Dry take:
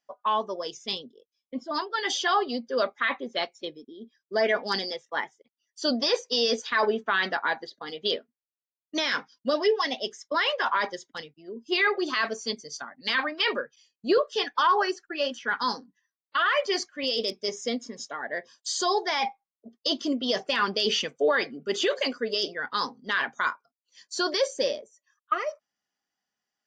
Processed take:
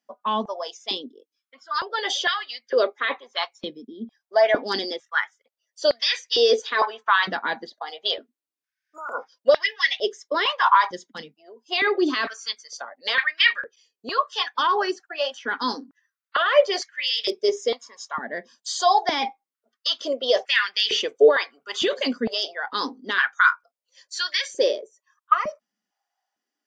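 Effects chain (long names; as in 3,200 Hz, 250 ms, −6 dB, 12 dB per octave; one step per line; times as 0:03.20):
healed spectral selection 0:08.52–0:09.21, 1,500–6,800 Hz both
dynamic equaliser 3,500 Hz, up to +5 dB, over −42 dBFS, Q 2.9
high-pass on a step sequencer 2.2 Hz 210–1,900 Hz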